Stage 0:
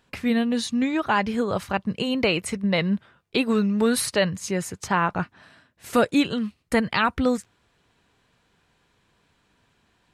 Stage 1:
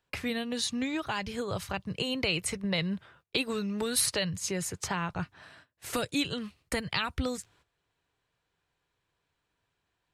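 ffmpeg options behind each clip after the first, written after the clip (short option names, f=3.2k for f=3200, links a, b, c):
-filter_complex "[0:a]agate=range=-14dB:threshold=-55dB:ratio=16:detection=peak,equalizer=f=220:t=o:w=0.49:g=-10.5,acrossover=split=200|2900[a][b][c];[b]acompressor=threshold=-34dB:ratio=4[d];[a][d][c]amix=inputs=3:normalize=0"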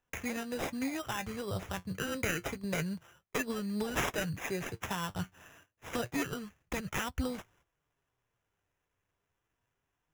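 -af "lowshelf=f=74:g=6.5,flanger=delay=3.8:depth=7.4:regen=58:speed=0.28:shape=triangular,acrusher=samples=10:mix=1:aa=0.000001"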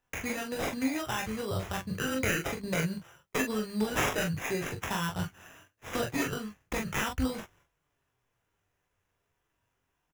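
-af "aecho=1:1:23|42:0.531|0.562,volume=2dB"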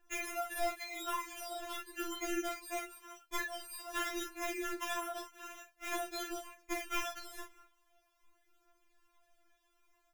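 -af "acompressor=threshold=-39dB:ratio=6,aphaser=in_gain=1:out_gain=1:delay=2.2:decay=0.41:speed=0.46:type=triangular,afftfilt=real='re*4*eq(mod(b,16),0)':imag='im*4*eq(mod(b,16),0)':win_size=2048:overlap=0.75,volume=7dB"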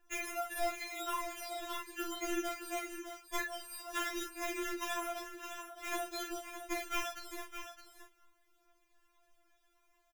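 -af "aecho=1:1:614:0.335"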